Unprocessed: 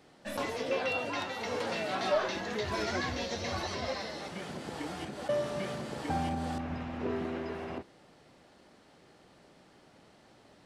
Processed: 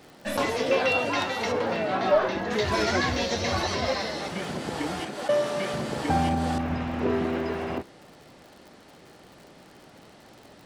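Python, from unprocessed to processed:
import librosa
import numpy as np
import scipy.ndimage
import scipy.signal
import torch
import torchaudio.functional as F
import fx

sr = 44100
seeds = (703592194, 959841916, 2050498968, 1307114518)

y = fx.lowpass(x, sr, hz=1500.0, slope=6, at=(1.51, 2.5), fade=0.02)
y = fx.dmg_crackle(y, sr, seeds[0], per_s=83.0, level_db=-49.0)
y = fx.highpass(y, sr, hz=310.0, slope=6, at=(5.0, 5.74))
y = F.gain(torch.from_numpy(y), 8.5).numpy()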